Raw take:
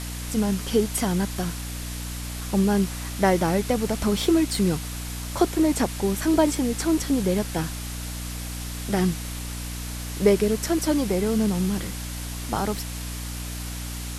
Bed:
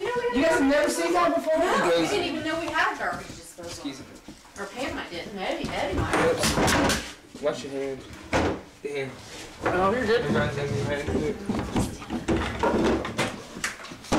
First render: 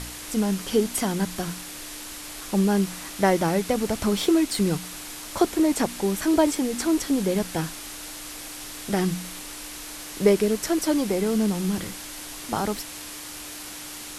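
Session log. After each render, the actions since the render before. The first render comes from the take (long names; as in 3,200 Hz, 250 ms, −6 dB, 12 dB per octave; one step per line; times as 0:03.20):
hum removal 60 Hz, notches 4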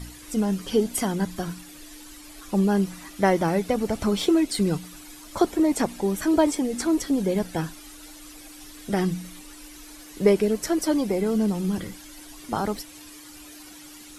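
broadband denoise 12 dB, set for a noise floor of −38 dBFS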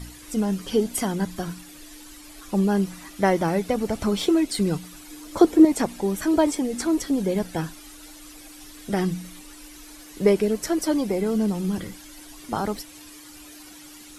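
0:05.10–0:05.65: hollow resonant body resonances 320/460 Hz, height 9 dB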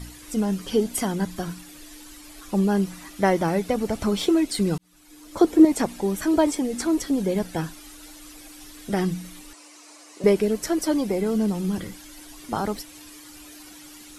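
0:04.78–0:05.61: fade in
0:09.53–0:10.24: loudspeaker in its box 420–9,100 Hz, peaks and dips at 620 Hz +5 dB, 1,100 Hz +4 dB, 1,600 Hz −6 dB, 3,400 Hz −7 dB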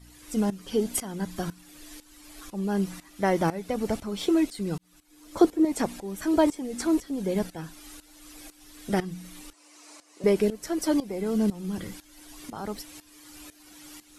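shaped tremolo saw up 2 Hz, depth 85%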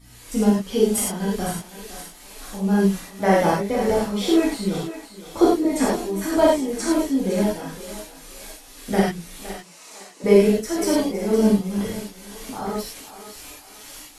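feedback echo with a high-pass in the loop 511 ms, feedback 39%, high-pass 420 Hz, level −11.5 dB
reverb whose tail is shaped and stops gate 130 ms flat, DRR −6.5 dB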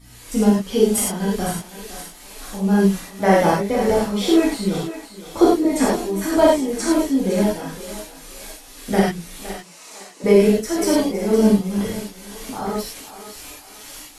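level +2.5 dB
brickwall limiter −3 dBFS, peak gain reduction 2.5 dB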